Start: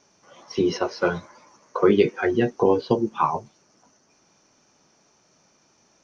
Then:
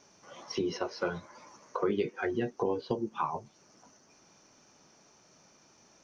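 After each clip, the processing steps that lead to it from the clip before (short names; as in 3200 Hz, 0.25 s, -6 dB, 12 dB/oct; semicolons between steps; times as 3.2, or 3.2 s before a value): compressor 2:1, threshold -37 dBFS, peak gain reduction 13.5 dB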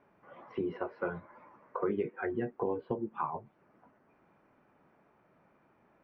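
LPF 2100 Hz 24 dB/oct; gain -2.5 dB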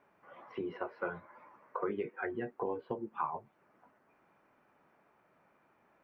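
low shelf 460 Hz -8.5 dB; gain +1 dB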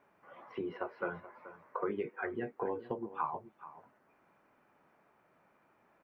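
echo 0.43 s -15.5 dB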